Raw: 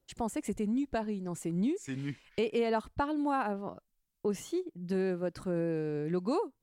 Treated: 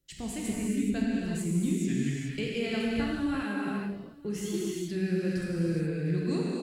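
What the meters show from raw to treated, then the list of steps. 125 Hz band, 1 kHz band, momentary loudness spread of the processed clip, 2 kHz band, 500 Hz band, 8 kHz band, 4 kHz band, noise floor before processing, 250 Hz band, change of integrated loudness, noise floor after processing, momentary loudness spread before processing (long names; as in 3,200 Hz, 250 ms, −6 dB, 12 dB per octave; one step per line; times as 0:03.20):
+7.0 dB, −7.0 dB, 6 LU, +5.5 dB, −1.5 dB, +7.0 dB, +7.0 dB, −81 dBFS, +4.5 dB, +2.5 dB, −45 dBFS, 6 LU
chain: drawn EQ curve 220 Hz 0 dB, 900 Hz −16 dB, 1,900 Hz +1 dB
on a send: single-tap delay 940 ms −23 dB
on the sum: reverb whose tail is shaped and stops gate 450 ms flat, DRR −5 dB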